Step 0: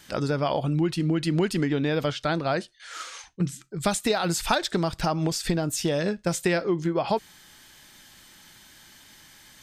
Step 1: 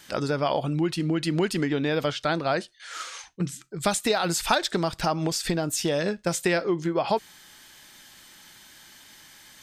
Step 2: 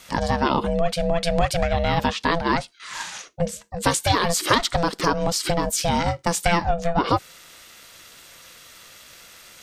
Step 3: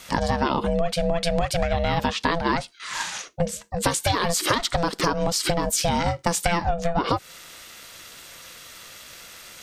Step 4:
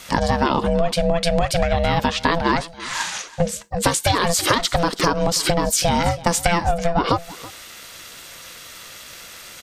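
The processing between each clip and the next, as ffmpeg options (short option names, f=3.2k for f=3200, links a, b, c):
-af "lowshelf=f=210:g=-6.5,volume=1.5dB"
-af "aeval=exprs='val(0)*sin(2*PI*340*n/s)':c=same,volume=7dB"
-af "acompressor=threshold=-21dB:ratio=6,volume=3dB"
-af "aecho=1:1:328:0.112,volume=4dB"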